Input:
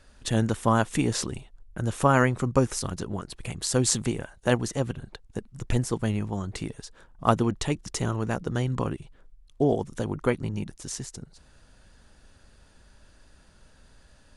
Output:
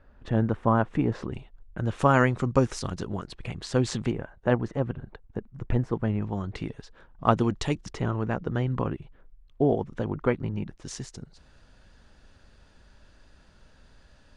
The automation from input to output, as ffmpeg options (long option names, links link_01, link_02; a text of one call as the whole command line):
ffmpeg -i in.wav -af "asetnsamples=nb_out_samples=441:pad=0,asendcmd='1.32 lowpass f 3100;1.99 lowpass f 5300;3.36 lowpass f 3300;4.11 lowpass f 1700;6.22 lowpass f 3300;7.37 lowpass f 6000;7.93 lowpass f 2500;10.85 lowpass f 5600',lowpass=1500" out.wav